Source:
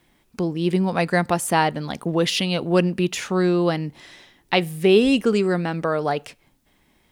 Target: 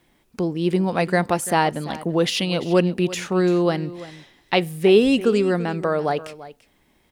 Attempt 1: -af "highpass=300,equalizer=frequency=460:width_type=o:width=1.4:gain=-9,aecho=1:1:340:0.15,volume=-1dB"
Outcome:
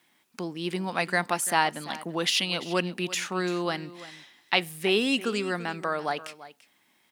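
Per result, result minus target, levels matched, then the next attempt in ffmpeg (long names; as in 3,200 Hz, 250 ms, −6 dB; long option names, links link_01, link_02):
500 Hz band −4.0 dB; 250 Hz band −3.5 dB
-af "highpass=300,equalizer=frequency=460:width_type=o:width=1.4:gain=2.5,aecho=1:1:340:0.15,volume=-1dB"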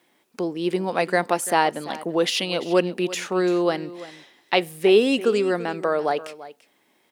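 250 Hz band −2.5 dB
-af "equalizer=frequency=460:width_type=o:width=1.4:gain=2.5,aecho=1:1:340:0.15,volume=-1dB"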